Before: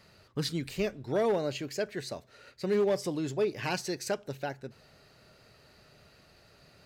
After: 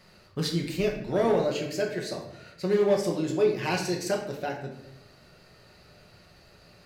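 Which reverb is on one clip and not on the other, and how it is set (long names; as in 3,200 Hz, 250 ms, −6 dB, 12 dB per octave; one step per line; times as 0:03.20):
rectangular room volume 210 cubic metres, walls mixed, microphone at 0.99 metres
level +1 dB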